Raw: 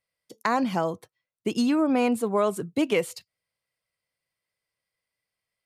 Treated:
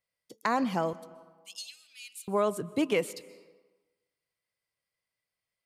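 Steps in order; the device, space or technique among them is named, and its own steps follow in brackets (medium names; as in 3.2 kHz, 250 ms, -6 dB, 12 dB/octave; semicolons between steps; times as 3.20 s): 0.93–2.28 s: inverse Chebyshev high-pass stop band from 950 Hz, stop band 60 dB; compressed reverb return (on a send at -14 dB: reverberation RT60 1.2 s, pre-delay 120 ms + compression, threshold -26 dBFS, peak gain reduction 11.5 dB); on the sum: trim -3.5 dB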